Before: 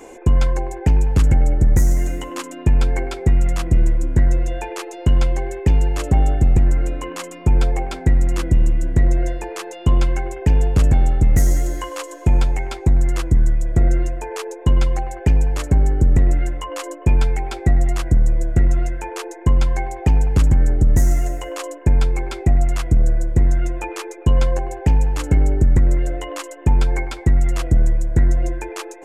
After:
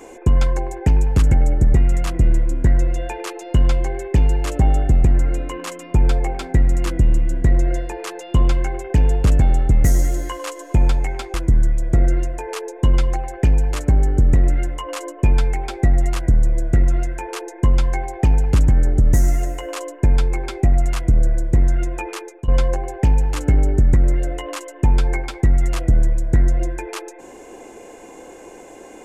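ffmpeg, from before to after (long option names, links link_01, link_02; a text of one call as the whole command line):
ffmpeg -i in.wav -filter_complex "[0:a]asplit=4[link_01][link_02][link_03][link_04];[link_01]atrim=end=1.742[link_05];[link_02]atrim=start=3.258:end=12.862[link_06];[link_03]atrim=start=13.168:end=24.31,asetpts=PTS-STARTPTS,afade=type=out:start_time=10.672:duration=0.47:curve=qsin:silence=0.149624[link_07];[link_04]atrim=start=24.31,asetpts=PTS-STARTPTS,afade=type=in:duration=0.004:curve=hsin:silence=0.149624[link_08];[link_05][link_06]acrossfade=duration=0.004:curve1=hsin:curve2=hsin[link_09];[link_07][link_08]concat=n=2:v=0:a=1[link_10];[link_09][link_10]acrossfade=duration=0.004:curve1=hsin:curve2=hsin" out.wav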